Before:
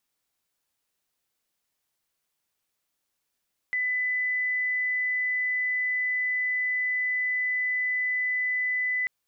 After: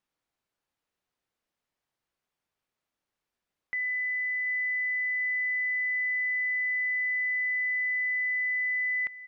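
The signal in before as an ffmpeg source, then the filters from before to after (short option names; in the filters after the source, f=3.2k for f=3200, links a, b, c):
-f lavfi -i "aevalsrc='0.0631*sin(2*PI*2000*t)':d=5.34:s=44100"
-af "lowpass=f=1.9k:p=1,aecho=1:1:737|1474|2211|2948:0.112|0.0516|0.0237|0.0109"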